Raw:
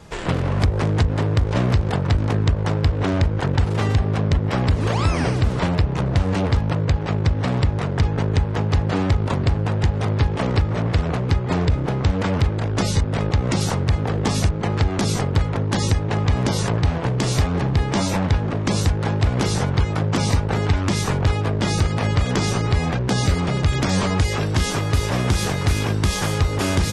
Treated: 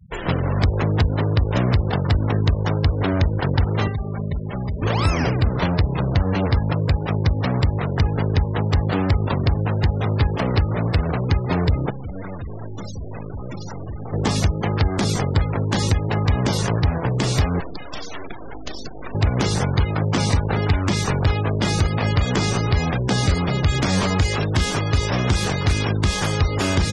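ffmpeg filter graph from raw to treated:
ffmpeg -i in.wav -filter_complex "[0:a]asettb=1/sr,asplit=3[link_01][link_02][link_03];[link_01]atrim=end=3.874[link_04];[link_02]atrim=start=3.87:end=4.82,asetpts=PTS-STARTPTS,afade=type=in:duration=0.004:curve=qsin,afade=type=out:start_time=0.946:duration=0.004:curve=qsin,acrossover=split=130|690|3000[link_05][link_06][link_07][link_08];[link_05]acompressor=threshold=-23dB:ratio=3[link_09];[link_06]acompressor=threshold=-33dB:ratio=3[link_10];[link_07]acompressor=threshold=-41dB:ratio=3[link_11];[link_08]acompressor=threshold=-48dB:ratio=3[link_12];[link_09][link_10][link_11][link_12]amix=inputs=4:normalize=0,aecho=1:1:5:0.35,atrim=end_sample=41895[link_13];[link_03]atrim=start=4.816[link_14];[link_04][link_13]acrossfade=duration=0.004:curve1=hsin:curve2=qsin[link_15];[link_15][link_14]acrossfade=duration=0.004:curve1=qsin:curve2=hsin,asettb=1/sr,asplit=3[link_16][link_17][link_18];[link_16]atrim=end=11.904[link_19];[link_17]atrim=start=11.9:end=14.13,asetpts=PTS-STARTPTS,afade=type=in:duration=0.004:curve=qsin,afade=type=out:start_time=2.226:duration=0.004:curve=qsin,acrusher=bits=4:dc=4:mix=0:aa=0.000001,asoftclip=type=hard:threshold=-26.5dB[link_20];[link_18]atrim=start=14.126[link_21];[link_19][link_20]acrossfade=duration=0.004:curve1=hsin:curve2=qsin[link_22];[link_22][link_21]acrossfade=duration=0.004:curve1=qsin:curve2=hsin,asettb=1/sr,asplit=3[link_23][link_24][link_25];[link_23]atrim=end=17.604[link_26];[link_24]atrim=start=17.6:end=19.15,asetpts=PTS-STARTPTS,afade=type=in:duration=0.004:curve=qsin,afade=type=out:start_time=1.546:duration=0.004:curve=qsin,acrossover=split=170|1800|7100[link_27][link_28][link_29][link_30];[link_27]acompressor=threshold=-33dB:ratio=3[link_31];[link_28]acompressor=threshold=-31dB:ratio=3[link_32];[link_29]acompressor=threshold=-32dB:ratio=3[link_33];[link_30]acompressor=threshold=-54dB:ratio=3[link_34];[link_31][link_32][link_33][link_34]amix=inputs=4:normalize=0,lowshelf=frequency=110:gain=-7.5,aeval=exprs='abs(val(0))':channel_layout=same[link_35];[link_25]atrim=start=19.146[link_36];[link_26][link_35]acrossfade=duration=0.004:curve1=hsin:curve2=qsin[link_37];[link_37][link_36]acrossfade=duration=0.004:curve1=qsin:curve2=hsin,afftfilt=real='re*gte(hypot(re,im),0.0316)':imag='im*gte(hypot(re,im),0.0316)':win_size=1024:overlap=0.75,highshelf=frequency=3600:gain=7.5,acrossover=split=4100[link_38][link_39];[link_39]acompressor=threshold=-30dB:ratio=4:attack=1:release=60[link_40];[link_38][link_40]amix=inputs=2:normalize=0" out.wav

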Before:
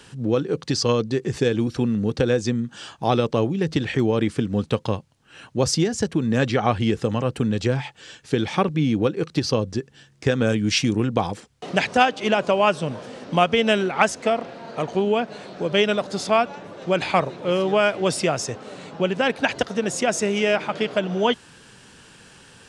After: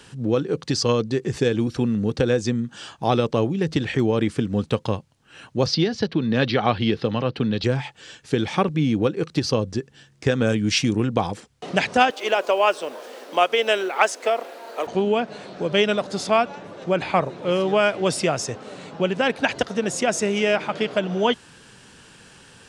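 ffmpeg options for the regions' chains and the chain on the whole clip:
ffmpeg -i in.wav -filter_complex "[0:a]asettb=1/sr,asplit=3[link_01][link_02][link_03];[link_01]atrim=end=5.664[link_04];[link_02]atrim=start=5.66:end=7.64,asetpts=PTS-STARTPTS,afade=type=in:duration=0.004:curve=qsin,afade=type=out:start_time=1.976:duration=0.004:curve=qsin,highpass=100,acrossover=split=8100[link_05][link_06];[link_06]acompressor=threshold=-53dB:ratio=4:attack=1:release=60[link_07];[link_05][link_07]amix=inputs=2:normalize=0,highshelf=frequency=5800:width_type=q:width=3:gain=-11[link_08];[link_03]atrim=start=7.636[link_09];[link_04][link_08]acrossfade=duration=0.004:curve1=hsin:curve2=qsin[link_10];[link_10][link_09]acrossfade=duration=0.004:curve1=qsin:curve2=hsin,asettb=1/sr,asplit=3[link_11][link_12][link_13];[link_11]atrim=end=12.104[link_14];[link_12]atrim=start=12.1:end=14.87,asetpts=PTS-STARTPTS,afade=type=in:duration=0.004:curve=qsin,afade=type=out:start_time=2.766:duration=0.004:curve=qsin,acrusher=bits=7:mix=0:aa=0.5,highpass=frequency=350:width=0.5412,highpass=frequency=350:width=1.3066[link_15];[link_13]atrim=start=14.866[link_16];[link_14][link_15]acrossfade=duration=0.004:curve1=hsin:curve2=qsin[link_17];[link_17][link_16]acrossfade=duration=0.004:curve1=qsin:curve2=hsin,asettb=1/sr,asplit=3[link_18][link_19][link_20];[link_18]atrim=end=16.844[link_21];[link_19]atrim=start=16.84:end=17.36,asetpts=PTS-STARTPTS,afade=type=in:duration=0.004:curve=qsin,afade=type=out:start_time=0.516:duration=0.004:curve=qsin,acrossover=split=4600[link_22][link_23];[link_23]acompressor=threshold=-47dB:ratio=4:attack=1:release=60[link_24];[link_22][link_24]amix=inputs=2:normalize=0,equalizer=frequency=3600:width_type=o:width=1.8:gain=-4[link_25];[link_20]atrim=start=17.356[link_26];[link_21][link_25]acrossfade=duration=0.004:curve1=hsin:curve2=qsin[link_27];[link_27][link_26]acrossfade=duration=0.004:curve1=qsin:curve2=hsin" out.wav

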